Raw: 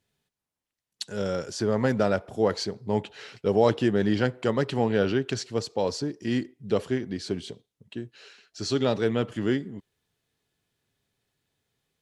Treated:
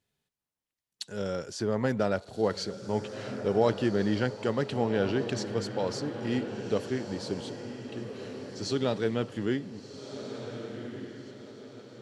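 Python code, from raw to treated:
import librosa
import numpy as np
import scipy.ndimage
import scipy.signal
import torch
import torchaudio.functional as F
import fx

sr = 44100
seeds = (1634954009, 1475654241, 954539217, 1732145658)

y = fx.echo_diffused(x, sr, ms=1497, feedback_pct=41, wet_db=-9)
y = F.gain(torch.from_numpy(y), -4.0).numpy()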